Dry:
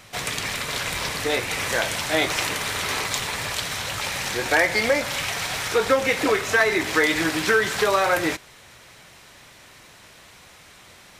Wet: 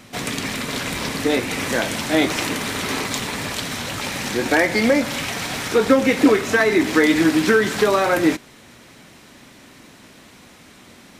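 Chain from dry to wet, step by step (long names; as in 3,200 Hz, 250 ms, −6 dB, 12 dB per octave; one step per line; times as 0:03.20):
parametric band 250 Hz +14.5 dB 1.1 octaves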